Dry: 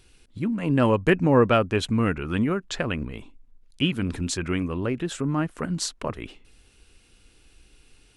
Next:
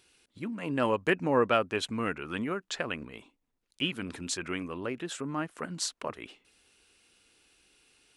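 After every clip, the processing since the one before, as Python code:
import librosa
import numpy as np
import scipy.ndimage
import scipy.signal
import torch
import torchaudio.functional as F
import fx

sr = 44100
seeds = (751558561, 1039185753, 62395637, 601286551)

y = fx.highpass(x, sr, hz=460.0, slope=6)
y = y * librosa.db_to_amplitude(-3.5)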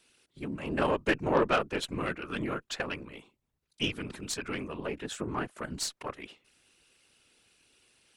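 y = fx.whisperise(x, sr, seeds[0])
y = fx.cheby_harmonics(y, sr, harmonics=(8,), levels_db=(-25,), full_scale_db=-10.0)
y = y * librosa.db_to_amplitude(-1.0)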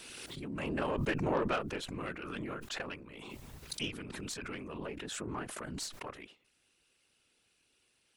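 y = fx.pre_swell(x, sr, db_per_s=23.0)
y = y * librosa.db_to_amplitude(-7.5)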